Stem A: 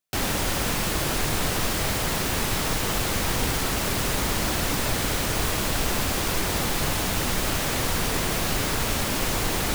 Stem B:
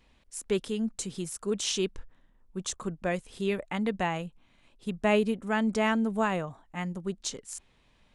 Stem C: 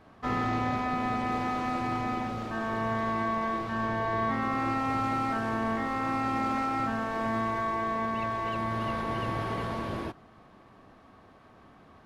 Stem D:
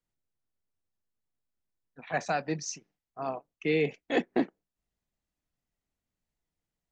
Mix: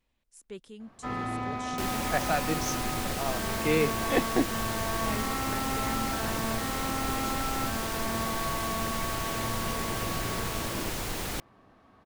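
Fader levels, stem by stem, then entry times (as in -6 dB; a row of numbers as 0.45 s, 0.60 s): -8.5 dB, -14.5 dB, -4.0 dB, +1.0 dB; 1.65 s, 0.00 s, 0.80 s, 0.00 s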